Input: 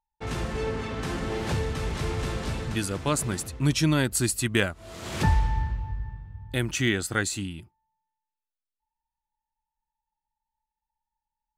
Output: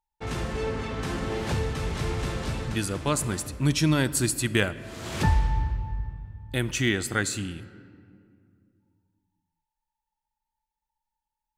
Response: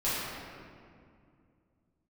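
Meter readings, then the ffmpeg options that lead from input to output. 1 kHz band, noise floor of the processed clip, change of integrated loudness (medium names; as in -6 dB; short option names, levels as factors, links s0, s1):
0.0 dB, under -85 dBFS, 0.0 dB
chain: -filter_complex "[0:a]asplit=2[s0][s1];[1:a]atrim=start_sample=2205,adelay=29[s2];[s1][s2]afir=irnorm=-1:irlink=0,volume=0.0562[s3];[s0][s3]amix=inputs=2:normalize=0"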